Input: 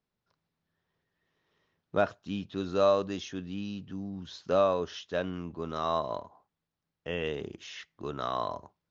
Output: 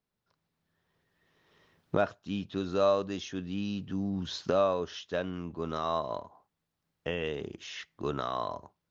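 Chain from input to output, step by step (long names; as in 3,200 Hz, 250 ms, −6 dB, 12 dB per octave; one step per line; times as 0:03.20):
camcorder AGC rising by 6.7 dB per second
level −1.5 dB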